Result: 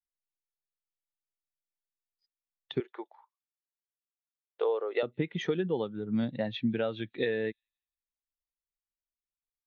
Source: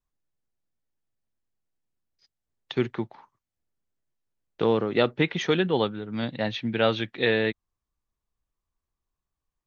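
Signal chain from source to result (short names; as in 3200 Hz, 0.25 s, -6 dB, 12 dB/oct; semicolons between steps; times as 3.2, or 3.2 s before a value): 2.8–5.03 HPF 450 Hz 24 dB/oct; compressor 10:1, threshold -28 dBFS, peak gain reduction 12 dB; thin delay 0.174 s, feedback 50%, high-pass 3800 Hz, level -23.5 dB; spectral expander 1.5:1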